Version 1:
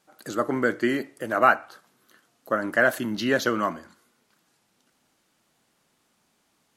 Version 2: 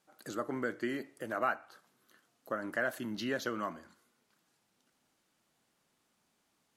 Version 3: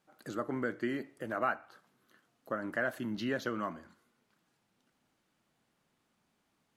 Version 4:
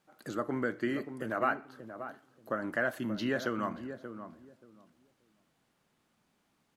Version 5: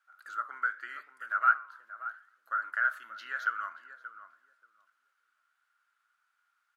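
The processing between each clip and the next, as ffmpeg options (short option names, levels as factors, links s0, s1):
-af "acompressor=threshold=0.0282:ratio=1.5,volume=0.422"
-af "bass=f=250:g=4,treble=f=4000:g=-6"
-filter_complex "[0:a]asplit=2[s0][s1];[s1]adelay=581,lowpass=f=810:p=1,volume=0.376,asplit=2[s2][s3];[s3]adelay=581,lowpass=f=810:p=1,volume=0.21,asplit=2[s4][s5];[s5]adelay=581,lowpass=f=810:p=1,volume=0.21[s6];[s0][s2][s4][s6]amix=inputs=4:normalize=0,volume=1.26"
-af "highpass=f=1400:t=q:w=11,flanger=delay=4.7:depth=6:regen=-88:speed=0.84:shape=triangular,volume=0.631"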